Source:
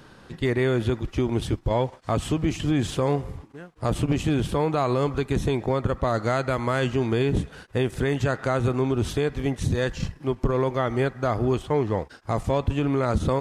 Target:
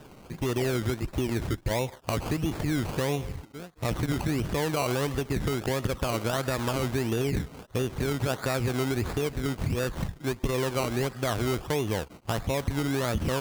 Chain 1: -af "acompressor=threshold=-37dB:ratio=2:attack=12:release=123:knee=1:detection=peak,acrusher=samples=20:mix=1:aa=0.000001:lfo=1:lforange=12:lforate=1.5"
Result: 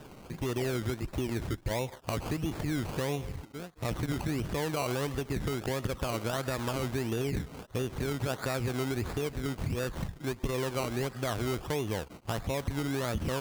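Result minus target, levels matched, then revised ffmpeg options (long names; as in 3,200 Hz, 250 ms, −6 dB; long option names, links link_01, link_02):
downward compressor: peak gain reduction +4.5 dB
-af "acompressor=threshold=-28.5dB:ratio=2:attack=12:release=123:knee=1:detection=peak,acrusher=samples=20:mix=1:aa=0.000001:lfo=1:lforange=12:lforate=1.5"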